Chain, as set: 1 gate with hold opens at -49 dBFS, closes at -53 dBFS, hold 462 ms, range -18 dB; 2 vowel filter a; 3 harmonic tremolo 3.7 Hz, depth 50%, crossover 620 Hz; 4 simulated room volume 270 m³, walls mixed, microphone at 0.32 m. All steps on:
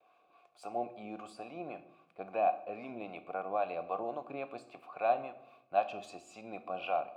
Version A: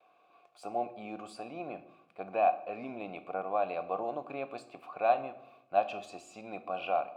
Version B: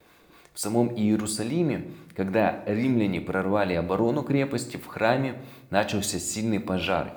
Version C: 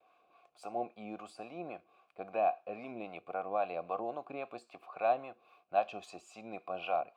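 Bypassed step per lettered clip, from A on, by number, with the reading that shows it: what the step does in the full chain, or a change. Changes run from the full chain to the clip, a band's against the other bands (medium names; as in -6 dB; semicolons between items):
3, loudness change +2.5 LU; 2, 1 kHz band -15.5 dB; 4, echo-to-direct -10.5 dB to none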